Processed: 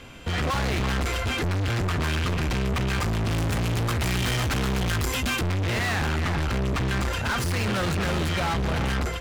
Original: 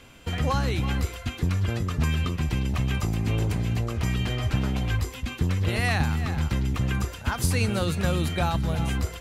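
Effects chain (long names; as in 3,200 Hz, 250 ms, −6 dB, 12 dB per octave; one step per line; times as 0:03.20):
dynamic equaliser 1,500 Hz, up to +6 dB, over −43 dBFS, Q 0.94
automatic gain control gain up to 9 dB
hard clipping −30 dBFS, distortion −4 dB
high-shelf EQ 7,100 Hz −7.5 dB, from 0:03.30 +2 dB, from 0:05.42 −10 dB
level +6 dB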